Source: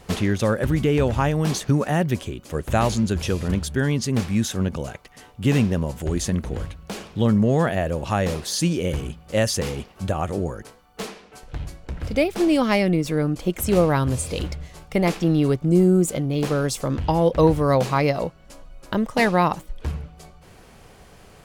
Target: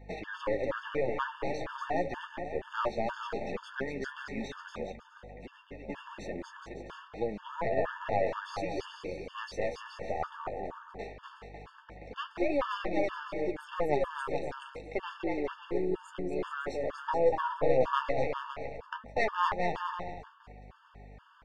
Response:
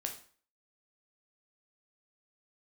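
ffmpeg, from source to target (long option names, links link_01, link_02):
-filter_complex "[0:a]highpass=520,lowpass=2100,aeval=exprs='(tanh(7.08*val(0)+0.65)-tanh(0.65))/7.08':channel_layout=same,flanger=delay=5.9:depth=9.7:regen=33:speed=0.14:shape=triangular,aecho=1:1:240|420|555|656.2|732.2:0.631|0.398|0.251|0.158|0.1,asplit=3[link_01][link_02][link_03];[link_01]afade=type=out:start_time=4.91:duration=0.02[link_04];[link_02]acompressor=threshold=-45dB:ratio=12,afade=type=in:start_time=4.91:duration=0.02,afade=type=out:start_time=5.88:duration=0.02[link_05];[link_03]afade=type=in:start_time=5.88:duration=0.02[link_06];[link_04][link_05][link_06]amix=inputs=3:normalize=0,aeval=exprs='val(0)+0.00251*(sin(2*PI*50*n/s)+sin(2*PI*2*50*n/s)/2+sin(2*PI*3*50*n/s)/3+sin(2*PI*4*50*n/s)/4+sin(2*PI*5*50*n/s)/5)':channel_layout=same,afftfilt=real='re*gt(sin(2*PI*2.1*pts/sr)*(1-2*mod(floor(b*sr/1024/900),2)),0)':imag='im*gt(sin(2*PI*2.1*pts/sr)*(1-2*mod(floor(b*sr/1024/900),2)),0)':win_size=1024:overlap=0.75,volume=3dB"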